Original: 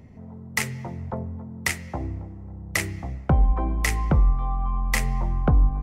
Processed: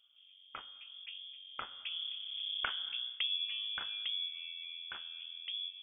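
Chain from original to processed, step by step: Doppler pass-by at 2.59 s, 15 m/s, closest 3.1 m; high-pass 50 Hz; low-pass that closes with the level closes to 2.1 kHz, closed at -24 dBFS; compression 2.5:1, threshold -37 dBFS, peak gain reduction 11 dB; frequency inversion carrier 3.4 kHz

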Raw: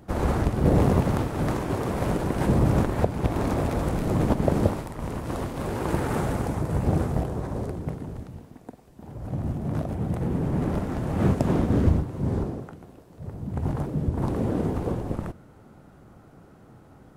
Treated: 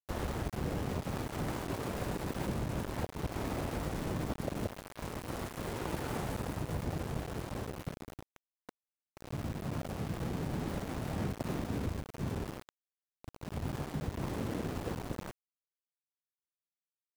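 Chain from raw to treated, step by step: compression 12:1, threshold -23 dBFS, peak gain reduction 10.5 dB; small samples zeroed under -29.5 dBFS; trim -8 dB

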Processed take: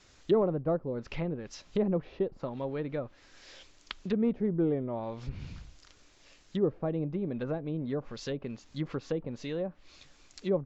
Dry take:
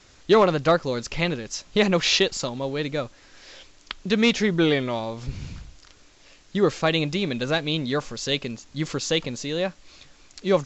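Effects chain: low-pass that closes with the level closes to 560 Hz, closed at -20.5 dBFS; trim -6.5 dB

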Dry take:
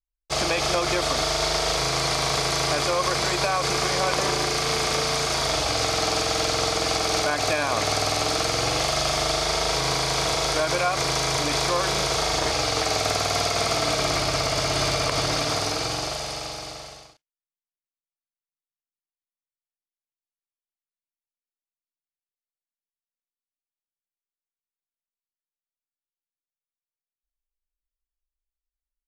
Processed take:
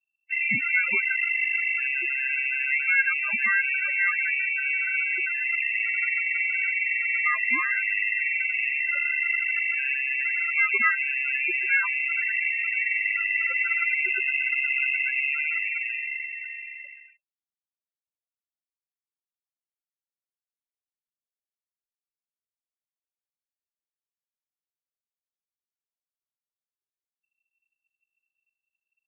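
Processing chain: partial rectifier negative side -7 dB; loudest bins only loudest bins 8; frequency inversion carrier 2.7 kHz; trim +5.5 dB

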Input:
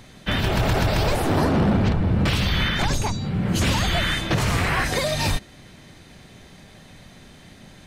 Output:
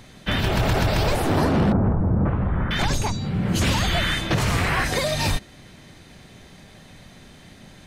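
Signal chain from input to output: 1.72–2.71 s: low-pass 1.3 kHz 24 dB/octave

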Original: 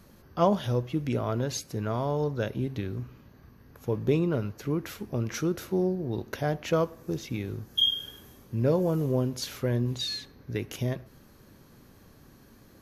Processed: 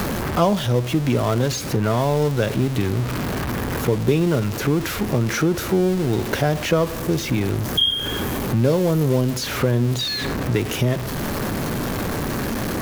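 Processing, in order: jump at every zero crossing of -32.5 dBFS; three bands compressed up and down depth 70%; trim +7 dB

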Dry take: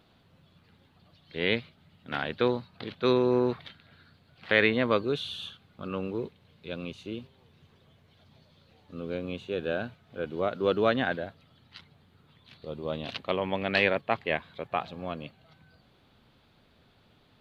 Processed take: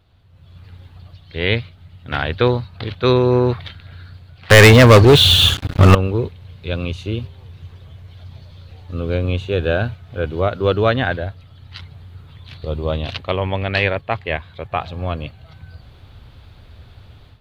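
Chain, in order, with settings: resonant low shelf 130 Hz +13 dB, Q 1.5; level rider gain up to 13.5 dB; 4.50–5.95 s: waveshaping leveller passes 5; trim -1 dB

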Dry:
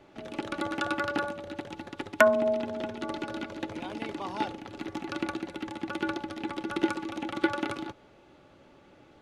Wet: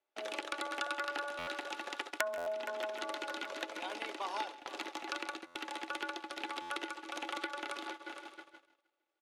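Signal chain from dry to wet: treble shelf 3.5 kHz +3.5 dB; multi-head delay 156 ms, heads first and third, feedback 67%, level -19.5 dB; compression 6:1, threshold -41 dBFS, peak gain reduction 24 dB; Bessel high-pass 590 Hz, order 4; gate -51 dBFS, range -37 dB; delay 135 ms -17.5 dB; buffer glitch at 1.38/2.37/5.46/6.61 s, samples 512, times 7; trim +8 dB

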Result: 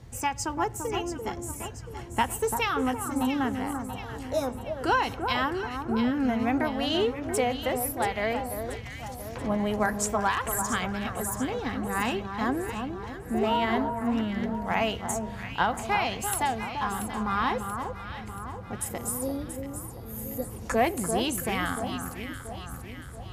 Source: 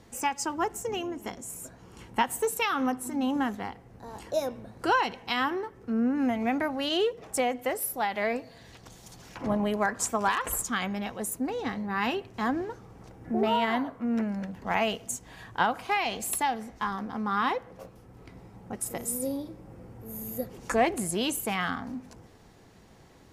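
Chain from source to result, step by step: band noise 42–130 Hz -44 dBFS; echo whose repeats swap between lows and highs 341 ms, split 1.4 kHz, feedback 71%, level -6 dB

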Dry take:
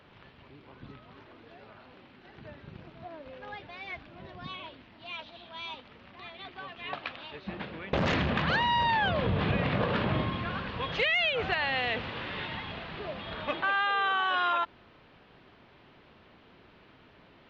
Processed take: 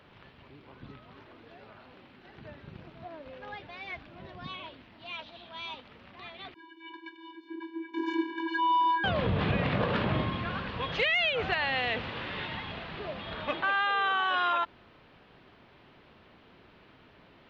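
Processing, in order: 6.54–9.04 s: vocoder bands 32, square 328 Hz

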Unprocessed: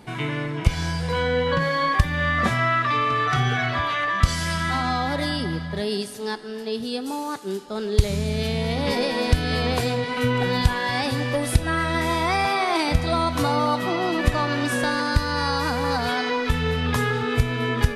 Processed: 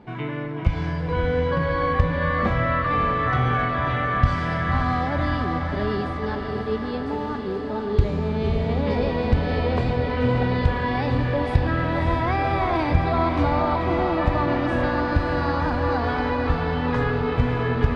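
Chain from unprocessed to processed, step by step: low-pass 3.7 kHz 12 dB/octave; treble shelf 2.1 kHz -11.5 dB; hum notches 50/100/150 Hz; on a send: echo that smears into a reverb 563 ms, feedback 70%, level -5 dB

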